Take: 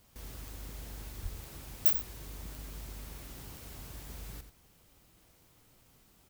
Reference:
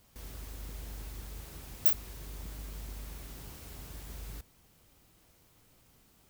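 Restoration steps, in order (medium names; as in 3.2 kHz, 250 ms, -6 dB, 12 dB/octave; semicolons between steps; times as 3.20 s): de-click; 1.22–1.34 s: high-pass 140 Hz 24 dB/octave; inverse comb 88 ms -10.5 dB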